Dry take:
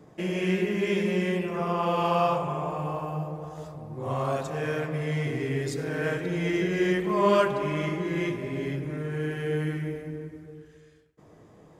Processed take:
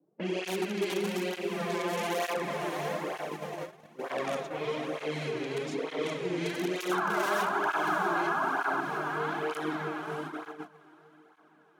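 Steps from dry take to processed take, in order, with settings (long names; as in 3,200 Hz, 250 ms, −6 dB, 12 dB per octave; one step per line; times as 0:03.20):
lower of the sound and its delayed copy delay 0.31 ms
in parallel at −4 dB: wrap-around overflow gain 19.5 dB
on the sum: sound drawn into the spectrogram noise, 0:06.91–0:08.81, 640–1,700 Hz −20 dBFS
low-pass that shuts in the quiet parts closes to 510 Hz, open at −19 dBFS
high-pass filter 210 Hz 24 dB per octave
on a send: feedback delay with all-pass diffusion 629 ms, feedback 56%, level −8.5 dB
on the sum: noise gate −31 dBFS, range −25 dB
downward compressor 2 to 1, threshold −46 dBFS, peak gain reduction 17 dB
through-zero flanger with one copy inverted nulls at 1.1 Hz, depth 4.8 ms
level +8.5 dB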